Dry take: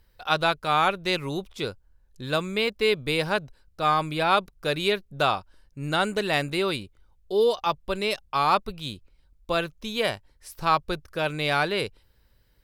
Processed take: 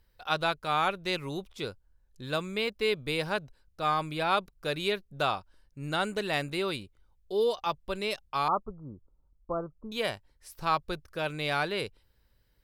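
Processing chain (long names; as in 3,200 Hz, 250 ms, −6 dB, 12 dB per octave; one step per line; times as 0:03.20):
0:08.48–0:09.92: Chebyshev low-pass filter 1,300 Hz, order 6
level −5.5 dB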